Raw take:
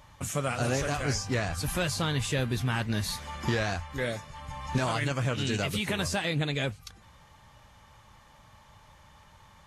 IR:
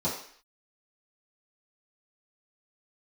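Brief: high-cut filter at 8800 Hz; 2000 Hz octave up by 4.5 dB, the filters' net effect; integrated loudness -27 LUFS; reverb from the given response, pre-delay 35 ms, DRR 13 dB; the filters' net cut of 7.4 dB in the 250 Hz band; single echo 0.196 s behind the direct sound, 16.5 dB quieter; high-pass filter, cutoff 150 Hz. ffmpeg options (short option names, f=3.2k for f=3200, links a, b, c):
-filter_complex "[0:a]highpass=150,lowpass=8.8k,equalizer=f=250:t=o:g=-9,equalizer=f=2k:t=o:g=6,aecho=1:1:196:0.15,asplit=2[a][b];[1:a]atrim=start_sample=2205,adelay=35[c];[b][c]afir=irnorm=-1:irlink=0,volume=-22dB[d];[a][d]amix=inputs=2:normalize=0,volume=3dB"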